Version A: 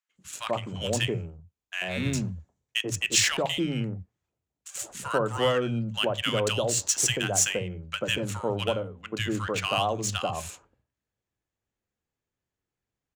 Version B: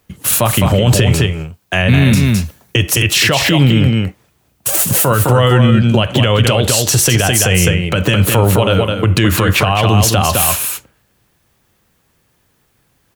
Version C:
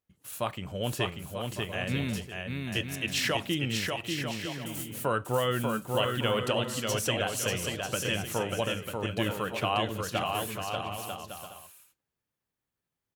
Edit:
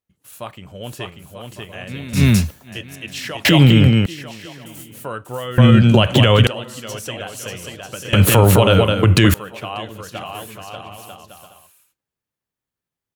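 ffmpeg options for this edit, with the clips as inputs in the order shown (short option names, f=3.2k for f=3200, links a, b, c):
-filter_complex "[1:a]asplit=4[a][b][c][d];[2:a]asplit=5[e][f][g][h][i];[e]atrim=end=2.22[j];[a]atrim=start=2.12:end=2.72[k];[f]atrim=start=2.62:end=3.452[l];[b]atrim=start=3.448:end=4.062[m];[g]atrim=start=4.058:end=5.582[n];[c]atrim=start=5.578:end=6.472[o];[h]atrim=start=6.468:end=8.132[p];[d]atrim=start=8.128:end=9.342[q];[i]atrim=start=9.338[r];[j][k]acrossfade=d=0.1:c1=tri:c2=tri[s];[s][l]acrossfade=d=0.1:c1=tri:c2=tri[t];[t][m]acrossfade=d=0.004:c1=hsin:c2=hsin[u];[u][n]acrossfade=d=0.004:c1=hsin:c2=hsin[v];[v][o]acrossfade=d=0.004:c1=hsin:c2=hsin[w];[w][p]acrossfade=d=0.004:c1=hsin:c2=hsin[x];[x][q]acrossfade=d=0.004:c1=hsin:c2=hsin[y];[y][r]acrossfade=d=0.004:c1=hsin:c2=hsin"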